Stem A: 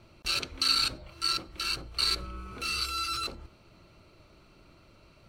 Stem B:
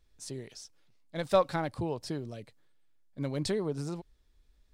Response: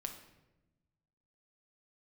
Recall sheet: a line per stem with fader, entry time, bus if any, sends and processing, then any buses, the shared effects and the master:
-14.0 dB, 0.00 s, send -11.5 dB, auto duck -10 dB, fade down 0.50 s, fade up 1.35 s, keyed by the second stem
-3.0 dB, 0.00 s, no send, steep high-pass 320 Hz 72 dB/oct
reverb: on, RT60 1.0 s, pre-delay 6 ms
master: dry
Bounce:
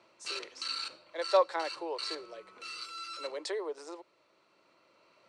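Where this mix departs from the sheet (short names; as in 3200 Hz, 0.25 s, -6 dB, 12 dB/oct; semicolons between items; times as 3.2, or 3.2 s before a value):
stem A -14.0 dB -> -5.5 dB; master: extra speaker cabinet 360–8600 Hz, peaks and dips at 520 Hz +5 dB, 1000 Hz +7 dB, 1900 Hz +5 dB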